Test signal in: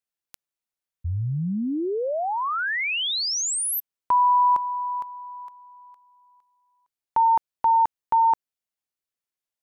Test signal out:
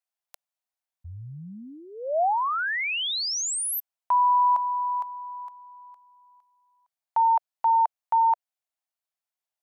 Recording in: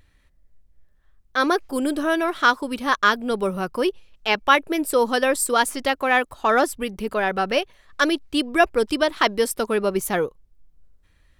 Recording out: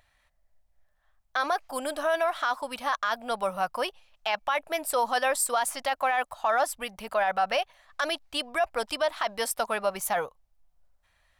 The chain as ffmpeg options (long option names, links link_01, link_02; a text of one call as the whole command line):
ffmpeg -i in.wav -af "lowshelf=frequency=510:width_type=q:width=3:gain=-10,alimiter=limit=-14dB:level=0:latency=1:release=27,volume=-2.5dB" out.wav